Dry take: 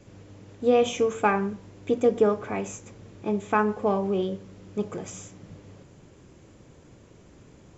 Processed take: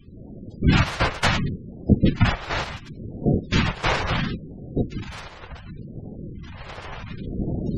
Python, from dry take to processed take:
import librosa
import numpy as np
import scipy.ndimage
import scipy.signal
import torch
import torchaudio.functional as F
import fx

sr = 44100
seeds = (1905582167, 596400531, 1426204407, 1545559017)

y = np.r_[np.sort(x[:len(x) // 256 * 256].reshape(-1, 256), axis=1).ravel(), x[len(x) // 256 * 256:]]
y = fx.recorder_agc(y, sr, target_db=-16.5, rise_db_per_s=7.0, max_gain_db=30)
y = fx.whisperise(y, sr, seeds[0])
y = fx.phaser_stages(y, sr, stages=2, low_hz=210.0, high_hz=1600.0, hz=0.7, feedback_pct=35)
y = fx.spec_gate(y, sr, threshold_db=-20, keep='strong')
y = y * librosa.db_to_amplitude(6.5)